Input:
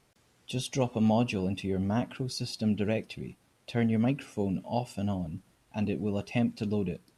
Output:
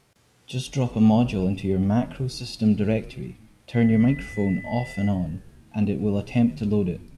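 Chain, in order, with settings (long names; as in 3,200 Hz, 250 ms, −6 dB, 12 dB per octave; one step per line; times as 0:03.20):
harmonic and percussive parts rebalanced percussive −10 dB
0:03.73–0:05.08: steady tone 2,000 Hz −46 dBFS
echo with shifted repeats 123 ms, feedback 61%, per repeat −84 Hz, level −20.5 dB
level +8.5 dB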